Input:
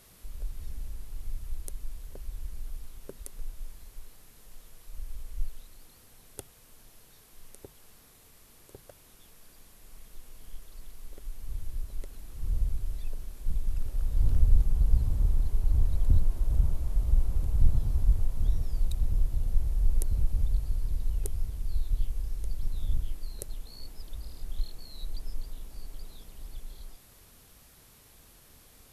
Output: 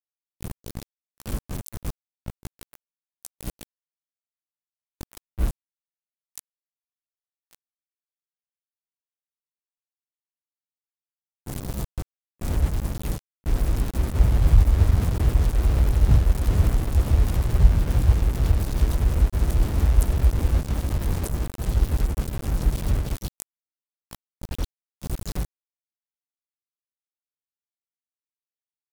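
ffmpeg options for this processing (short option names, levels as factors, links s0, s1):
-filter_complex "[0:a]afreqshift=26,aeval=exprs='val(0)*gte(abs(val(0)),0.0473)':c=same,asplit=3[s0][s1][s2];[s1]asetrate=35002,aresample=44100,atempo=1.25992,volume=0.891[s3];[s2]asetrate=58866,aresample=44100,atempo=0.749154,volume=0.891[s4];[s0][s3][s4]amix=inputs=3:normalize=0"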